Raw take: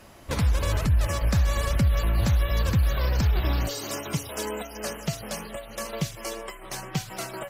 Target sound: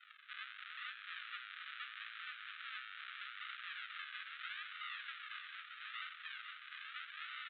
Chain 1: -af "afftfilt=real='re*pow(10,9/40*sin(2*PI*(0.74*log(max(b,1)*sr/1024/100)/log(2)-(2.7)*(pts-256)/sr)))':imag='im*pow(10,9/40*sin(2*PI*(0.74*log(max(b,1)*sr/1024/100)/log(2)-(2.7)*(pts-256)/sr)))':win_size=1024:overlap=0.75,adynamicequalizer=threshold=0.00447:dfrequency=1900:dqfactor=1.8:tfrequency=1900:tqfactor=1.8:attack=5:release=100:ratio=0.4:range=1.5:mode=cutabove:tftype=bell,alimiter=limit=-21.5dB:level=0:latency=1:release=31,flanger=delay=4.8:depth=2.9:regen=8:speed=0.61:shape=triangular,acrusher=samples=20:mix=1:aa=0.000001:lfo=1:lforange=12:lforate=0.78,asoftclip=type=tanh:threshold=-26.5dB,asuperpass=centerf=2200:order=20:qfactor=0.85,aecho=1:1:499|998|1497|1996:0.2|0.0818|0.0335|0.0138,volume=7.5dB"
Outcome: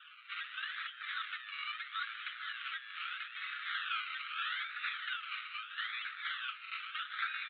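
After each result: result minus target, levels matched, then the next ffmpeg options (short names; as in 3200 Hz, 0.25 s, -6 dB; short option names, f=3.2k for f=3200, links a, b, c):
soft clip: distortion -12 dB; echo-to-direct -6.5 dB; decimation with a swept rate: distortion -6 dB
-af "afftfilt=real='re*pow(10,9/40*sin(2*PI*(0.74*log(max(b,1)*sr/1024/100)/log(2)-(2.7)*(pts-256)/sr)))':imag='im*pow(10,9/40*sin(2*PI*(0.74*log(max(b,1)*sr/1024/100)/log(2)-(2.7)*(pts-256)/sr)))':win_size=1024:overlap=0.75,adynamicequalizer=threshold=0.00447:dfrequency=1900:dqfactor=1.8:tfrequency=1900:tqfactor=1.8:attack=5:release=100:ratio=0.4:range=1.5:mode=cutabove:tftype=bell,alimiter=limit=-21.5dB:level=0:latency=1:release=31,flanger=delay=4.8:depth=2.9:regen=8:speed=0.61:shape=triangular,acrusher=samples=20:mix=1:aa=0.000001:lfo=1:lforange=12:lforate=0.78,asoftclip=type=tanh:threshold=-38dB,asuperpass=centerf=2200:order=20:qfactor=0.85,aecho=1:1:499|998|1497|1996:0.2|0.0818|0.0335|0.0138,volume=7.5dB"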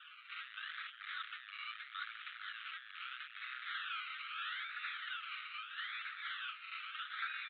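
echo-to-direct -6.5 dB; decimation with a swept rate: distortion -6 dB
-af "afftfilt=real='re*pow(10,9/40*sin(2*PI*(0.74*log(max(b,1)*sr/1024/100)/log(2)-(2.7)*(pts-256)/sr)))':imag='im*pow(10,9/40*sin(2*PI*(0.74*log(max(b,1)*sr/1024/100)/log(2)-(2.7)*(pts-256)/sr)))':win_size=1024:overlap=0.75,adynamicequalizer=threshold=0.00447:dfrequency=1900:dqfactor=1.8:tfrequency=1900:tqfactor=1.8:attack=5:release=100:ratio=0.4:range=1.5:mode=cutabove:tftype=bell,alimiter=limit=-21.5dB:level=0:latency=1:release=31,flanger=delay=4.8:depth=2.9:regen=8:speed=0.61:shape=triangular,acrusher=samples=20:mix=1:aa=0.000001:lfo=1:lforange=12:lforate=0.78,asoftclip=type=tanh:threshold=-38dB,asuperpass=centerf=2200:order=20:qfactor=0.85,aecho=1:1:499|998|1497|1996|2495:0.422|0.173|0.0709|0.0291|0.0119,volume=7.5dB"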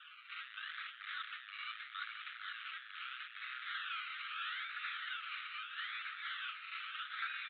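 decimation with a swept rate: distortion -6 dB
-af "afftfilt=real='re*pow(10,9/40*sin(2*PI*(0.74*log(max(b,1)*sr/1024/100)/log(2)-(2.7)*(pts-256)/sr)))':imag='im*pow(10,9/40*sin(2*PI*(0.74*log(max(b,1)*sr/1024/100)/log(2)-(2.7)*(pts-256)/sr)))':win_size=1024:overlap=0.75,adynamicequalizer=threshold=0.00447:dfrequency=1900:dqfactor=1.8:tfrequency=1900:tqfactor=1.8:attack=5:release=100:ratio=0.4:range=1.5:mode=cutabove:tftype=bell,alimiter=limit=-21.5dB:level=0:latency=1:release=31,flanger=delay=4.8:depth=2.9:regen=8:speed=0.61:shape=triangular,acrusher=samples=75:mix=1:aa=0.000001:lfo=1:lforange=45:lforate=0.78,asoftclip=type=tanh:threshold=-38dB,asuperpass=centerf=2200:order=20:qfactor=0.85,aecho=1:1:499|998|1497|1996|2495:0.422|0.173|0.0709|0.0291|0.0119,volume=7.5dB"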